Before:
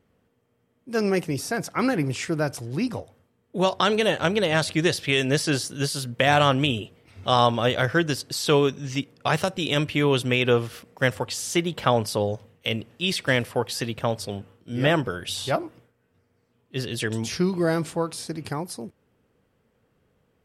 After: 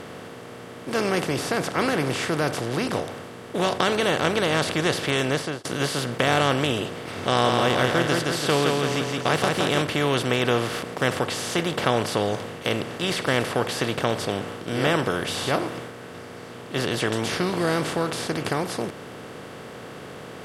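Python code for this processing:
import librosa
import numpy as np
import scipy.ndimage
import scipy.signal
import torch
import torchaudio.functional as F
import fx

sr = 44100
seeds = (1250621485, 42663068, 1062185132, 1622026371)

y = fx.studio_fade_out(x, sr, start_s=5.17, length_s=0.48)
y = fx.echo_feedback(y, sr, ms=168, feedback_pct=34, wet_db=-6, at=(7.24, 9.82))
y = fx.bin_compress(y, sr, power=0.4)
y = fx.notch(y, sr, hz=2500.0, q=18.0)
y = y * librosa.db_to_amplitude(-6.5)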